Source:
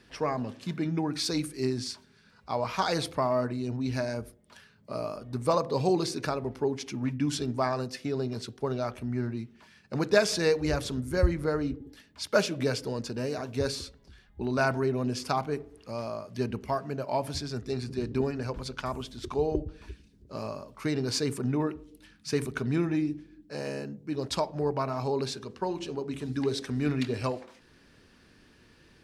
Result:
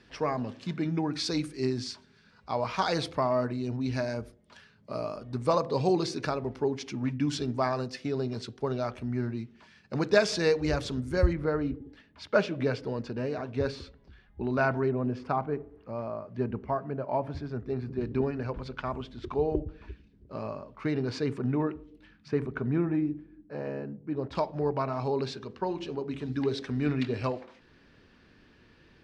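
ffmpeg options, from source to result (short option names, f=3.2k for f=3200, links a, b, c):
-af "asetnsamples=n=441:p=0,asendcmd='11.33 lowpass f 2800;14.91 lowpass f 1600;18.01 lowpass f 2700;22.28 lowpass f 1600;24.35 lowpass f 4000',lowpass=6k"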